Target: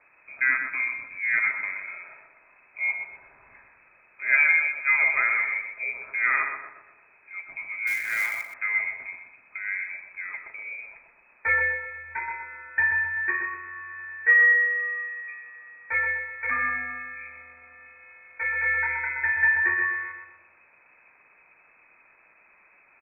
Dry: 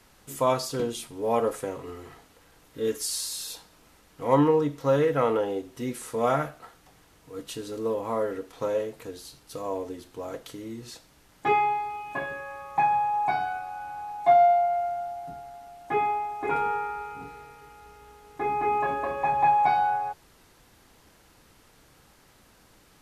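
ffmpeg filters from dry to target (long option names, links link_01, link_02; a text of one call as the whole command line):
ffmpeg -i in.wav -filter_complex "[0:a]lowpass=frequency=2200:width_type=q:width=0.5098,lowpass=frequency=2200:width_type=q:width=0.6013,lowpass=frequency=2200:width_type=q:width=0.9,lowpass=frequency=2200:width_type=q:width=2.563,afreqshift=-2600,asplit=2[link_01][link_02];[link_02]adelay=124,lowpass=frequency=1400:poles=1,volume=-3.5dB,asplit=2[link_03][link_04];[link_04]adelay=124,lowpass=frequency=1400:poles=1,volume=0.51,asplit=2[link_05][link_06];[link_06]adelay=124,lowpass=frequency=1400:poles=1,volume=0.51,asplit=2[link_07][link_08];[link_08]adelay=124,lowpass=frequency=1400:poles=1,volume=0.51,asplit=2[link_09][link_10];[link_10]adelay=124,lowpass=frequency=1400:poles=1,volume=0.51,asplit=2[link_11][link_12];[link_12]adelay=124,lowpass=frequency=1400:poles=1,volume=0.51,asplit=2[link_13][link_14];[link_14]adelay=124,lowpass=frequency=1400:poles=1,volume=0.51[link_15];[link_01][link_03][link_05][link_07][link_09][link_11][link_13][link_15]amix=inputs=8:normalize=0,asettb=1/sr,asplit=3[link_16][link_17][link_18];[link_16]atrim=end=7.874[link_19];[link_17]atrim=start=7.87:end=8.54,asetpts=PTS-STARTPTS,afade=type=in:duration=0.004:curve=qsin,afade=type=out:start_time=0.666:duration=0.004:curve=qsin,acrusher=bits=3:mode=log:mix=0:aa=0.000001[link_20];[link_18]atrim=start=8.536[link_21];[link_19][link_20]acrossfade=duration=0.004:curve1=hsin:curve2=qsin[link_22];[link_22][link_21]acrossfade=duration=0.004:curve1=qsin:curve2=hsin" out.wav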